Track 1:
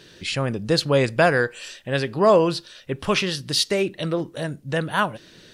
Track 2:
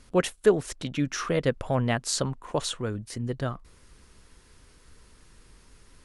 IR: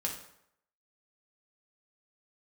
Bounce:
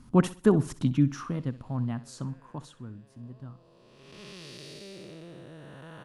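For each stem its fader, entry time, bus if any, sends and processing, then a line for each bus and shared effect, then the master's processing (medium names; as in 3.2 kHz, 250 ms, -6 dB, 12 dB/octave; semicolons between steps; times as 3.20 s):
-15.0 dB, 1.10 s, no send, no echo send, spectral blur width 611 ms; auto duck -21 dB, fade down 2.00 s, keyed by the second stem
0.87 s -2 dB -> 1.53 s -14.5 dB -> 2.50 s -14.5 dB -> 3.15 s -23 dB, 0.00 s, no send, echo send -16.5 dB, graphic EQ 125/250/500/1000/2000/4000/8000 Hz +10/+11/-9/+7/-6/-4/-4 dB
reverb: none
echo: feedback delay 64 ms, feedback 33%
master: none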